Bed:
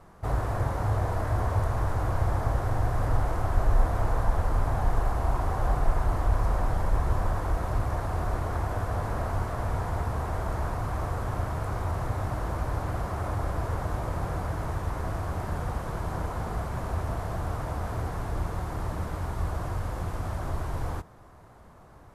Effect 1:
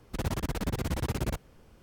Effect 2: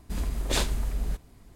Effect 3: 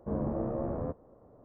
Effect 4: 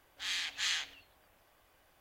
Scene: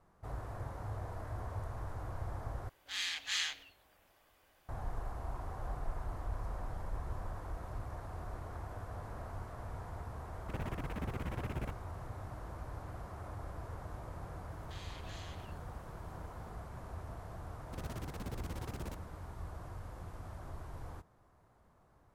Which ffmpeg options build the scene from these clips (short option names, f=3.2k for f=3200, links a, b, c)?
-filter_complex "[4:a]asplit=2[a][b];[1:a]asplit=2[c][d];[0:a]volume=-15dB[e];[c]highshelf=f=3.4k:t=q:w=1.5:g=-9.5[f];[b]acompressor=threshold=-46dB:ratio=6:attack=3.2:release=140:knee=1:detection=peak[g];[e]asplit=2[h][i];[h]atrim=end=2.694[j];[a]atrim=end=2,asetpts=PTS-STARTPTS,volume=-1.5dB[k];[i]atrim=start=4.686[l];[f]atrim=end=1.82,asetpts=PTS-STARTPTS,volume=-9dB,afade=t=in:d=0.004:c=hsin,afade=t=out:st=1.816:d=0.004:c=hsin,adelay=10350[m];[g]atrim=end=2,asetpts=PTS-STARTPTS,volume=-5dB,afade=t=in:d=0.004:c=hsin,afade=t=out:st=1.996:d=0.004:c=hsin,adelay=14510[n];[d]atrim=end=1.82,asetpts=PTS-STARTPTS,volume=-12.5dB,afade=t=in:d=0.004:c=hsin,afade=t=out:st=1.816:d=0.004:c=hsin,adelay=17590[o];[j][k]acrossfade=d=0.004:c1=hsin:c2=hsin[p];[p][l]acrossfade=d=0.004:c1=hsin:c2=hsin[q];[q][m][n][o]amix=inputs=4:normalize=0"